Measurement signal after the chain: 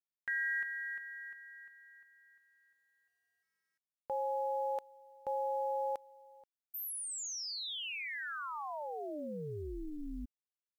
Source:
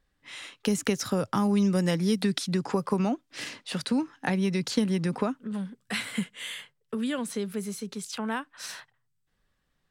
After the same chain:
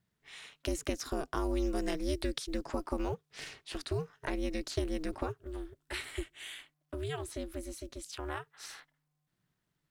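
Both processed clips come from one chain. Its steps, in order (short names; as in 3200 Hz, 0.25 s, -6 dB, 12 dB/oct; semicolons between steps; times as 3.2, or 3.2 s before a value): ring modulator 150 Hz; companded quantiser 8-bit; gain -5 dB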